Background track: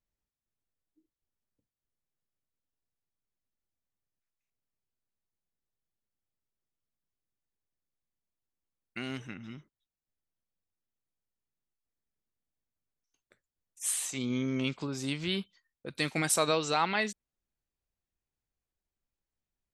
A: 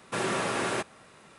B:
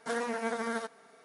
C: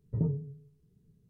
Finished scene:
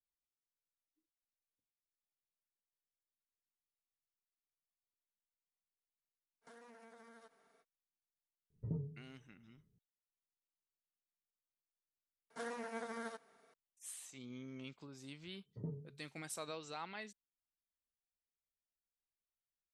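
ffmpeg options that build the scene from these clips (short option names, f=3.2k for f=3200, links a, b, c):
-filter_complex "[2:a]asplit=2[a][b];[3:a]asplit=2[c][d];[0:a]volume=-18dB[e];[a]acompressor=threshold=-42dB:ratio=6:attack=3.2:release=140:knee=1:detection=peak[f];[d]highpass=160[g];[f]atrim=end=1.24,asetpts=PTS-STARTPTS,volume=-14.5dB,afade=t=in:d=0.05,afade=t=out:st=1.19:d=0.05,adelay=6410[h];[c]atrim=end=1.29,asetpts=PTS-STARTPTS,volume=-11dB,afade=t=in:d=0.004:c=hsin,afade=t=out:st=1.286:d=0.004:c=hsin,adelay=374850S[i];[b]atrim=end=1.24,asetpts=PTS-STARTPTS,volume=-11dB,afade=t=in:d=0.004:c=hsin,afade=t=out:st=1.236:d=0.004:c=hsin,adelay=12300[j];[g]atrim=end=1.29,asetpts=PTS-STARTPTS,volume=-11.5dB,afade=t=in:d=0.004:c=hsin,afade=t=out:st=1.286:d=0.004:c=hsin,adelay=15430[k];[e][h][i][j][k]amix=inputs=5:normalize=0"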